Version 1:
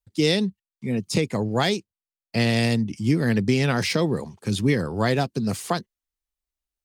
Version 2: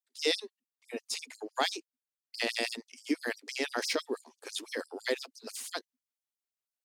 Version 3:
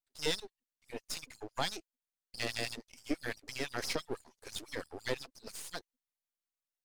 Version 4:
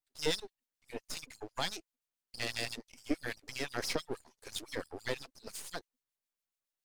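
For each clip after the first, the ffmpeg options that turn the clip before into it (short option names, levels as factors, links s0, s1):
-af "bandreject=f=50:t=h:w=6,bandreject=f=100:t=h:w=6,bandreject=f=150:t=h:w=6,bandreject=f=200:t=h:w=6,bandreject=f=250:t=h:w=6,afftfilt=real='re*gte(b*sr/1024,230*pow(4900/230,0.5+0.5*sin(2*PI*6*pts/sr)))':imag='im*gte(b*sr/1024,230*pow(4900/230,0.5+0.5*sin(2*PI*6*pts/sr)))':win_size=1024:overlap=0.75,volume=0.562"
-af "aeval=exprs='if(lt(val(0),0),0.251*val(0),val(0))':c=same,volume=0.891"
-filter_complex "[0:a]acrossover=split=1900[s0][s1];[s0]aeval=exprs='val(0)*(1-0.5/2+0.5/2*cos(2*PI*7.1*n/s))':c=same[s2];[s1]aeval=exprs='val(0)*(1-0.5/2-0.5/2*cos(2*PI*7.1*n/s))':c=same[s3];[s2][s3]amix=inputs=2:normalize=0,volume=1.33"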